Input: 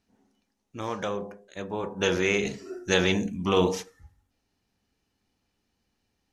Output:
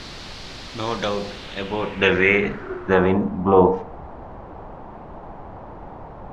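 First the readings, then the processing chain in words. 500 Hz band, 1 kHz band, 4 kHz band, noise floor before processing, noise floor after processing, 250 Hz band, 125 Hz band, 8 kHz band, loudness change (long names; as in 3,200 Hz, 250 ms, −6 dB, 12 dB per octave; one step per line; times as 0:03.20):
+7.5 dB, +10.0 dB, +1.5 dB, −78 dBFS, −39 dBFS, +6.5 dB, +6.5 dB, can't be measured, +7.0 dB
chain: background noise pink −43 dBFS
low-pass filter sweep 4,400 Hz → 850 Hz, 0:01.24–0:03.35
level +6 dB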